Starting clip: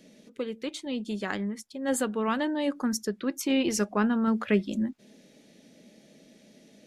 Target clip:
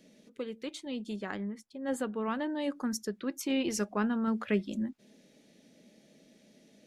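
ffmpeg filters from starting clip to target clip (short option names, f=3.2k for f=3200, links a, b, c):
-filter_complex "[0:a]asettb=1/sr,asplit=3[a][b][c];[a]atrim=end=1.164[d];[b]atrim=start=1.16:end=2.5,asetpts=PTS-STARTPTS,afade=t=in:d=0.004:c=qsin,afade=t=out:st=1.336:d=0.004:c=qsin,highshelf=f=3.2k:g=-9[e];[c]atrim=start=2.496[f];[d][e]acrossfade=d=0.004:c1=hsin:c2=qsin[g];[g][f]acrossfade=d=0.004:c1=qsin:c2=hsin,volume=-5dB"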